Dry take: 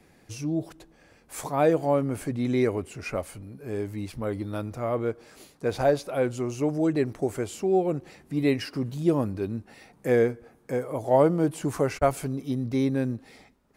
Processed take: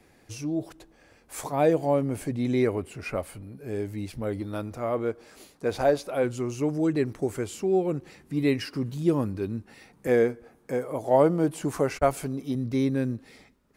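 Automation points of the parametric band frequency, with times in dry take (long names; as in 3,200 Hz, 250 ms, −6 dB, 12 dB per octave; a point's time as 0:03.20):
parametric band −5.5 dB 0.55 octaves
170 Hz
from 0:01.52 1,300 Hz
from 0:02.61 6,300 Hz
from 0:03.57 1,100 Hz
from 0:04.40 130 Hz
from 0:06.24 670 Hz
from 0:10.07 110 Hz
from 0:12.55 760 Hz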